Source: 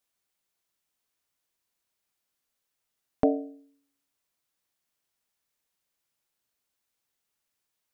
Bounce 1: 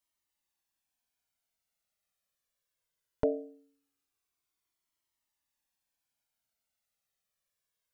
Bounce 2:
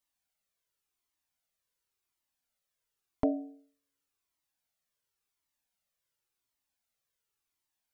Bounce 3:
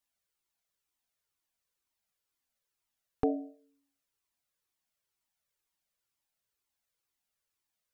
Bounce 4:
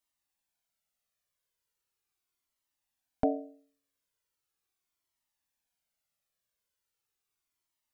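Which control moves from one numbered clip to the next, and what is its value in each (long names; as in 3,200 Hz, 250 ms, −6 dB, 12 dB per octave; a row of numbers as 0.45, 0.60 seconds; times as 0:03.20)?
flanger whose copies keep moving one way, speed: 0.2, 0.92, 2.1, 0.39 Hertz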